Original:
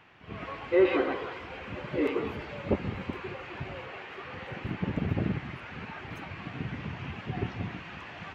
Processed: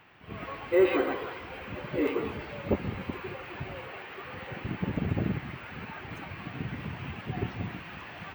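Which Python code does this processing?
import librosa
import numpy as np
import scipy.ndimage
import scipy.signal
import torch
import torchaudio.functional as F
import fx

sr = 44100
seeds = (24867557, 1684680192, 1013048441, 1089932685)

y = np.repeat(x[::2], 2)[:len(x)]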